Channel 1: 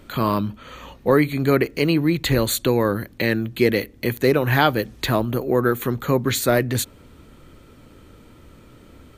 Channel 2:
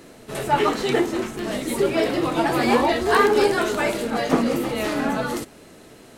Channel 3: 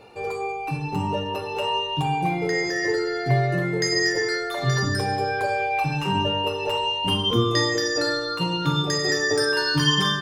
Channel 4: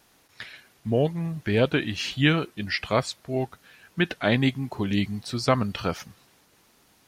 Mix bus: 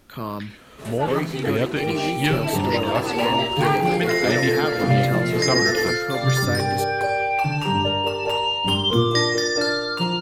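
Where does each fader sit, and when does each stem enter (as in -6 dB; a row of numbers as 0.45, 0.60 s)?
-9.0, -7.0, +2.0, -2.0 dB; 0.00, 0.50, 1.60, 0.00 s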